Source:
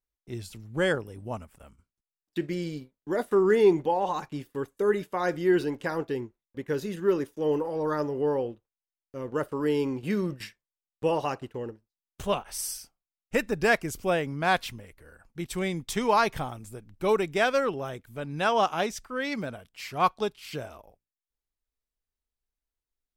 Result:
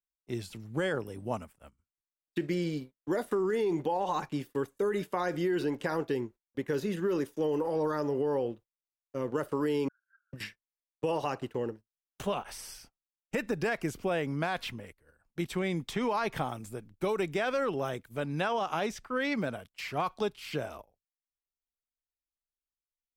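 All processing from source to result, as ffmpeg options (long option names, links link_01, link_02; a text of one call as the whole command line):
ffmpeg -i in.wav -filter_complex "[0:a]asettb=1/sr,asplit=3[link_01][link_02][link_03];[link_01]atrim=end=9.884[link_04];[link_02]atrim=start=9.88:end=10.33,asetpts=PTS-STARTPTS,afade=type=in:duration=0.004:curve=qsin,afade=type=out:start_time=0.446:duration=0.004:curve=qsin,aeval=exprs='val(0)*sin(2*PI*120*n/s)':channel_layout=same,asuperpass=centerf=1500:order=8:qfactor=6.6[link_05];[link_03]atrim=start=10.326[link_06];[link_04][link_05]acrossfade=duration=0.004:curve1=hsin:curve2=qsin[link_07];[link_07][link_06]acrossfade=duration=0.004:curve1=qsin:curve2=hsin,agate=range=-17dB:threshold=-48dB:ratio=16:detection=peak,alimiter=limit=-21.5dB:level=0:latency=1:release=60,acrossover=split=120|3500[link_08][link_09][link_10];[link_08]acompressor=threshold=-57dB:ratio=4[link_11];[link_09]acompressor=threshold=-29dB:ratio=4[link_12];[link_10]acompressor=threshold=-52dB:ratio=4[link_13];[link_11][link_12][link_13]amix=inputs=3:normalize=0,volume=2.5dB" out.wav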